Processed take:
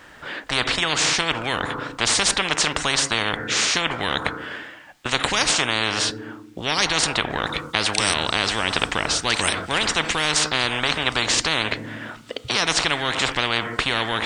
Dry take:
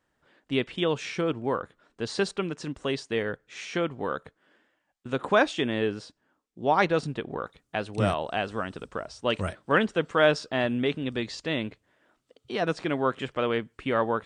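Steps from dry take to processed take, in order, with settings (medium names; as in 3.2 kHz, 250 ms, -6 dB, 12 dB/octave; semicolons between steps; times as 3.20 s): peaking EQ 2.3 kHz +8 dB 2.7 oct; FDN reverb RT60 0.77 s, low-frequency decay 1.55×, high-frequency decay 0.35×, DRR 18.5 dB; spectrum-flattening compressor 10:1; trim +1.5 dB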